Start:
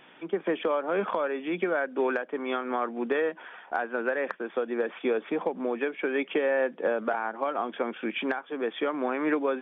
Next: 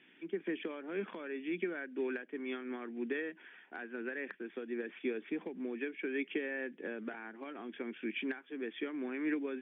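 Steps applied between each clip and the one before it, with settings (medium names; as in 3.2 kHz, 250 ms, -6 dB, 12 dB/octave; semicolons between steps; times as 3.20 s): Chebyshev band-pass 210–2700 Hz, order 2; high-order bell 820 Hz -14 dB; trim -6 dB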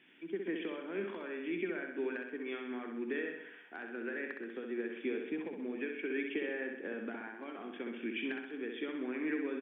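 feedback delay 64 ms, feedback 57%, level -5 dB; trim -1 dB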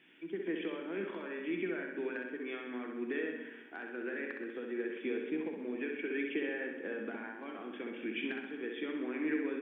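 simulated room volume 1100 m³, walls mixed, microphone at 0.65 m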